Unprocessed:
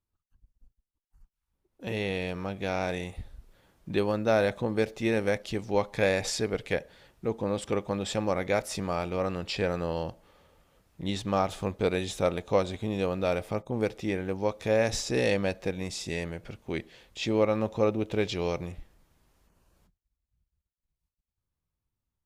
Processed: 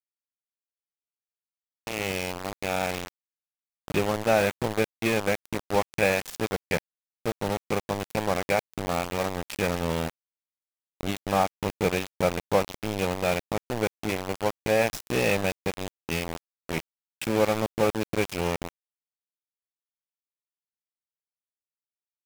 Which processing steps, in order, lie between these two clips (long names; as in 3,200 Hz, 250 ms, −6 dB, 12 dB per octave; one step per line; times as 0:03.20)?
low-pass that shuts in the quiet parts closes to 1,700 Hz, open at −25.5 dBFS
thirty-one-band graphic EQ 160 Hz +11 dB, 800 Hz +6 dB, 2,500 Hz +7 dB, 4,000 Hz −8 dB
centre clipping without the shift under −25.5 dBFS
level +1 dB